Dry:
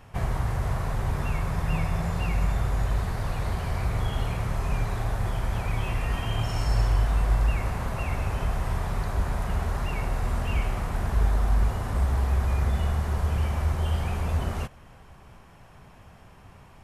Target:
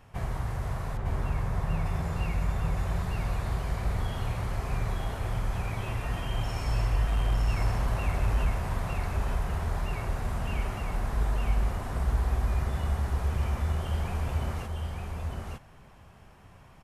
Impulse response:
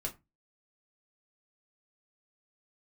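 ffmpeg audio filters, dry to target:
-filter_complex "[0:a]asettb=1/sr,asplit=3[a][b][c];[a]atrim=end=0.974[d];[b]atrim=start=0.97:end=1.86,asetpts=PTS-STARTPTS,afade=t=in:d=0.004:c=qsin,afade=t=out:st=0.886:d=0.004:c=qsin,lowpass=f=1.9k:p=1[e];[c]atrim=start=1.856[f];[d][e]acrossfade=d=0.004:c1=hsin:c2=qsin[g];[g][f]acrossfade=d=0.004:c1=qsin:c2=hsin,asettb=1/sr,asplit=3[h][i][j];[h]atrim=end=7.094[k];[i]atrim=start=7.09:end=8.49,asetpts=PTS-STARTPTS,afade=t=in:d=0.004:c=qsin,afade=t=out:st=1.396:d=0.004:c=qsin,aeval=exprs='0.237*(cos(1*acos(clip(val(0)/0.237,-1,1)))-cos(1*PI/2))+0.0237*(cos(5*acos(clip(val(0)/0.237,-1,1)))-cos(5*PI/2))':c=same[l];[j]atrim=start=8.486[m];[k][l]acrossfade=d=0.004:c1=hsin:c2=qsin[n];[n][m]acrossfade=d=0.004:c1=qsin:c2=hsin,aecho=1:1:907:0.708,volume=-5dB"

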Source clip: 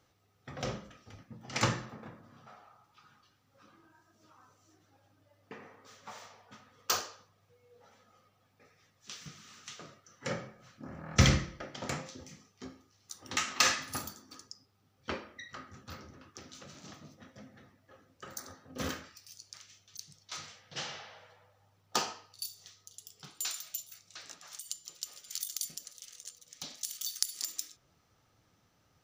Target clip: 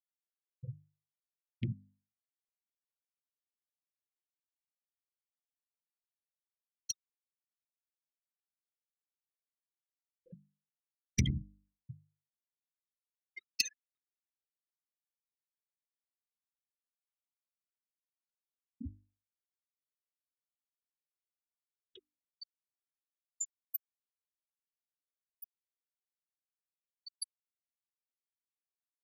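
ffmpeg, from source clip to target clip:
-af "afftfilt=real='re*gte(hypot(re,im),0.141)':imag='im*gte(hypot(re,im),0.141)':win_size=1024:overlap=0.75,bandreject=f=50:t=h:w=6,bandreject=f=100:t=h:w=6,bandreject=f=150:t=h:w=6,bandreject=f=200:t=h:w=6,bandreject=f=250:t=h:w=6,bandreject=f=300:t=h:w=6,acompressor=threshold=-41dB:ratio=3,aeval=exprs='0.0668*(cos(1*acos(clip(val(0)/0.0668,-1,1)))-cos(1*PI/2))+0.0133*(cos(3*acos(clip(val(0)/0.0668,-1,1)))-cos(3*PI/2))':c=same,asuperstop=centerf=920:order=12:qfactor=0.52,volume=14.5dB"

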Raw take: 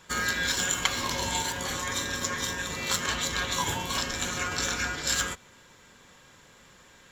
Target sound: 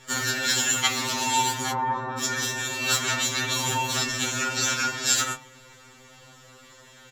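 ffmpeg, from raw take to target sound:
-filter_complex "[0:a]asettb=1/sr,asplit=3[a][b][c];[a]atrim=end=1.714[d];[b]atrim=start=1.71:end=2.19,asetpts=PTS-STARTPTS,afade=t=in:d=0.004:c=qsin,afade=t=out:st=0.476:d=0.004:c=qsin,lowpass=f=1k:t=q:w=3.9[e];[c]atrim=start=2.186[f];[d][e]acrossfade=d=0.004:c1=hsin:c2=qsin[g];[g][f]acrossfade=d=0.004:c1=qsin:c2=hsin,asplit=2[h][i];[i]adelay=17,volume=-13dB[j];[h][j]amix=inputs=2:normalize=0,bandreject=f=69.01:t=h:w=4,bandreject=f=138.02:t=h:w=4,bandreject=f=207.03:t=h:w=4,bandreject=f=276.04:t=h:w=4,bandreject=f=345.05:t=h:w=4,bandreject=f=414.06:t=h:w=4,bandreject=f=483.07:t=h:w=4,bandreject=f=552.08:t=h:w=4,bandreject=f=621.09:t=h:w=4,bandreject=f=690.1:t=h:w=4,bandreject=f=759.11:t=h:w=4,bandreject=f=828.12:t=h:w=4,bandreject=f=897.13:t=h:w=4,bandreject=f=966.14:t=h:w=4,bandreject=f=1.03515k:t=h:w=4,bandreject=f=1.10416k:t=h:w=4,bandreject=f=1.17317k:t=h:w=4,bandreject=f=1.24218k:t=h:w=4,bandreject=f=1.31119k:t=h:w=4,bandreject=f=1.3802k:t=h:w=4,bandreject=f=1.44921k:t=h:w=4,bandreject=f=1.51822k:t=h:w=4,bandreject=f=1.58723k:t=h:w=4,bandreject=f=1.65624k:t=h:w=4,bandreject=f=1.72525k:t=h:w=4,bandreject=f=1.79426k:t=h:w=4,bandreject=f=1.86327k:t=h:w=4,bandreject=f=1.93228k:t=h:w=4,bandreject=f=2.00129k:t=h:w=4,bandreject=f=2.0703k:t=h:w=4,bandreject=f=2.13931k:t=h:w=4,bandreject=f=2.20832k:t=h:w=4,bandreject=f=2.27733k:t=h:w=4,bandreject=f=2.34634k:t=h:w=4,bandreject=f=2.41535k:t=h:w=4,bandreject=f=2.48436k:t=h:w=4,bandreject=f=2.55337k:t=h:w=4,afftfilt=real='re*2.45*eq(mod(b,6),0)':imag='im*2.45*eq(mod(b,6),0)':win_size=2048:overlap=0.75,volume=7dB"

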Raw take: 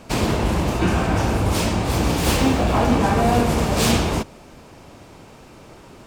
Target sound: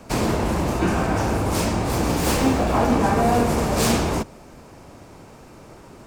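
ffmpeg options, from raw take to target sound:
-filter_complex "[0:a]equalizer=f=3.2k:w=1.4:g=-5.5,acrossover=split=200|830|4900[a][b][c][d];[a]asoftclip=type=hard:threshold=-24dB[e];[e][b][c][d]amix=inputs=4:normalize=0"

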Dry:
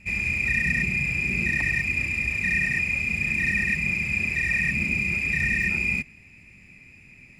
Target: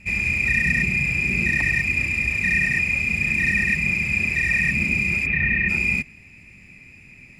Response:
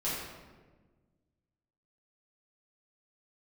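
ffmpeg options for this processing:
-filter_complex "[0:a]asplit=3[a][b][c];[a]afade=t=out:st=5.25:d=0.02[d];[b]lowpass=f=3k:w=0.5412,lowpass=f=3k:w=1.3066,afade=t=in:st=5.25:d=0.02,afade=t=out:st=5.68:d=0.02[e];[c]afade=t=in:st=5.68:d=0.02[f];[d][e][f]amix=inputs=3:normalize=0,volume=3.5dB"

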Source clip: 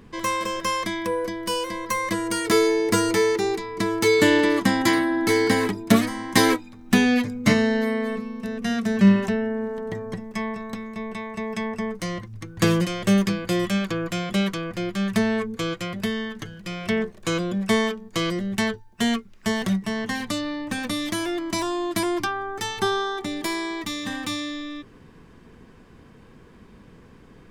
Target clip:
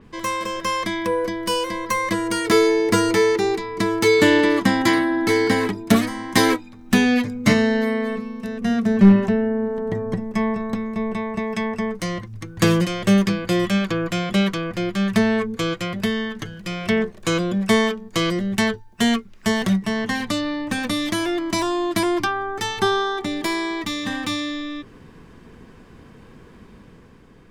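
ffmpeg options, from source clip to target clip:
-filter_complex "[0:a]asettb=1/sr,asplit=3[a][b][c];[a]atrim=end=8.614[d];[b]atrim=start=8.61:end=11.39,asetpts=PTS-STARTPTS,afade=t=in:d=0.004:c=qsin,afade=t=out:st=2.776:d=0.004:c=qsin,tiltshelf=f=1.3k:g=4.5[e];[c]atrim=start=11.386[f];[d][e]acrossfade=d=0.004:c1=hsin:c2=qsin[g];[g][f]acrossfade=d=0.004:c1=qsin:c2=hsin,aeval=exprs='clip(val(0),-1,0.355)':c=same,dynaudnorm=f=120:g=13:m=4dB,adynamicequalizer=threshold=0.00708:dfrequency=5700:dqfactor=0.7:tfrequency=5700:tqfactor=0.7:attack=5:release=100:ratio=0.375:range=2.5:mode=cutabove:tftype=highshelf"

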